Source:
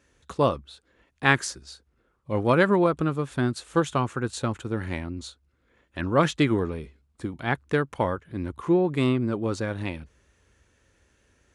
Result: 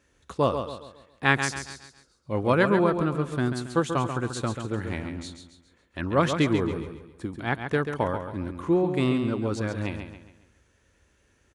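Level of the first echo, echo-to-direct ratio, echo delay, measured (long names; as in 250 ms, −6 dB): −7.5 dB, −6.5 dB, 137 ms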